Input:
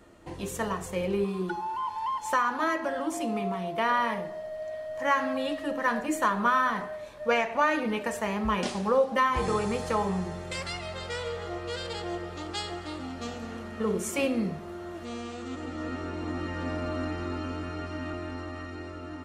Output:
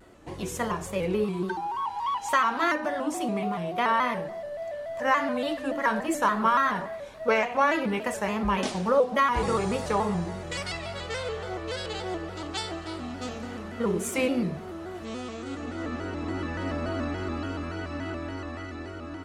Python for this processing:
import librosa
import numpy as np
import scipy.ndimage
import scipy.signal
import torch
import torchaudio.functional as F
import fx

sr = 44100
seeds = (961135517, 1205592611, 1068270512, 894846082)

y = fx.dynamic_eq(x, sr, hz=2900.0, q=1.1, threshold_db=-43.0, ratio=4.0, max_db=6, at=(2.02, 2.73))
y = fx.vibrato_shape(y, sr, shape='square', rate_hz=3.5, depth_cents=100.0)
y = y * librosa.db_to_amplitude(1.5)